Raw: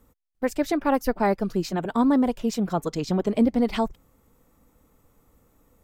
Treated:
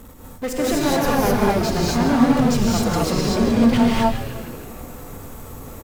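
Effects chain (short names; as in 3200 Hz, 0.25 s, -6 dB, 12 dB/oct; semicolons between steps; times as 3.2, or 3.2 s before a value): power-law curve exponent 0.5; frequency-shifting echo 0.156 s, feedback 63%, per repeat -120 Hz, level -10 dB; non-linear reverb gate 0.28 s rising, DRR -5 dB; gain -6 dB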